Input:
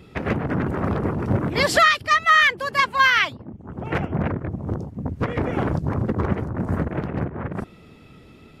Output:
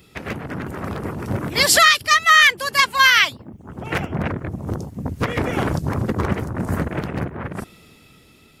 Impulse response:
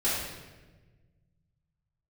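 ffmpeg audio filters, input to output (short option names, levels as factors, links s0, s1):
-af "dynaudnorm=f=230:g=11:m=3.76,crystalizer=i=5:c=0,volume=0.473"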